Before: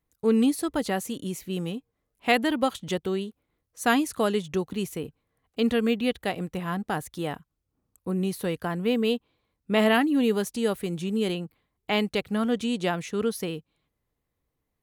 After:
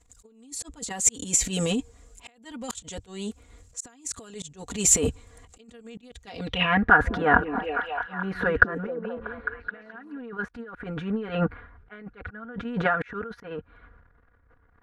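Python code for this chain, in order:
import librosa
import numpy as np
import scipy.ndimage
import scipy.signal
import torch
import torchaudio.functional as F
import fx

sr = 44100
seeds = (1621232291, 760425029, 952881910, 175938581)

y = fx.low_shelf_res(x, sr, hz=130.0, db=7.5, q=3.0)
y = y + 0.89 * np.pad(y, (int(4.2 * sr / 1000.0), 0))[:len(y)]
y = fx.transient(y, sr, attack_db=-8, sustain_db=12)
y = fx.over_compress(y, sr, threshold_db=-28.0, ratio=-0.5)
y = fx.auto_swell(y, sr, attack_ms=557.0)
y = fx.filter_sweep_lowpass(y, sr, from_hz=7400.0, to_hz=1500.0, start_s=6.16, end_s=6.92, q=7.7)
y = fx.echo_stepped(y, sr, ms=213, hz=280.0, octaves=0.7, feedback_pct=70, wet_db=-2.5, at=(7.04, 10.18), fade=0.02)
y = y * 10.0 ** (2.5 / 20.0)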